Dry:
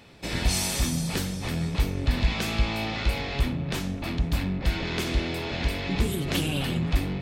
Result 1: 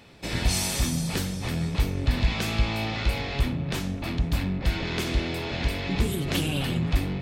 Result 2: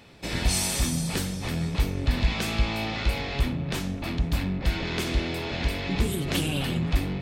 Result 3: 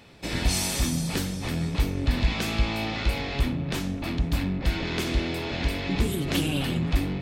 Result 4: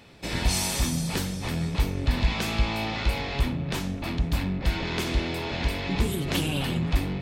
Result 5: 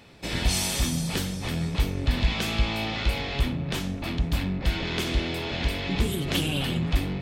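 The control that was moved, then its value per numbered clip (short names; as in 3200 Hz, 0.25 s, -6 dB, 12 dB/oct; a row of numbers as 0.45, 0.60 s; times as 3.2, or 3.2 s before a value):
dynamic EQ, frequency: 110, 8700, 290, 940, 3200 Hz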